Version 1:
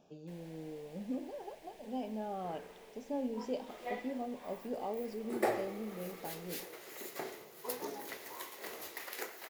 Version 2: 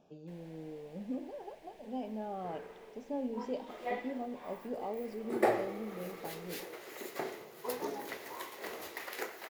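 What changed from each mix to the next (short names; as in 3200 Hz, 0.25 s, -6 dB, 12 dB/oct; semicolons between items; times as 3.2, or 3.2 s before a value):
second sound +4.0 dB; master: add high shelf 4200 Hz -7.5 dB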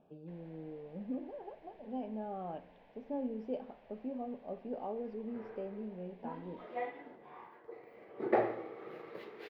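second sound: entry +2.90 s; master: add air absorption 380 m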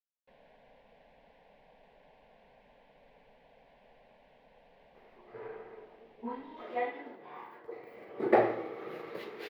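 speech: muted; second sound +5.0 dB; master: add high shelf 4200 Hz +7.5 dB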